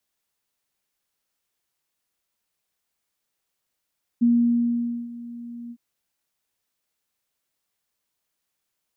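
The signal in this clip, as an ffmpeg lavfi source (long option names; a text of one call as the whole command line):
ffmpeg -f lavfi -i "aevalsrc='0.2*sin(2*PI*237*t)':duration=1.557:sample_rate=44100,afade=type=in:duration=0.018,afade=type=out:start_time=0.018:duration=0.856:silence=0.106,afade=type=out:start_time=1.5:duration=0.057" out.wav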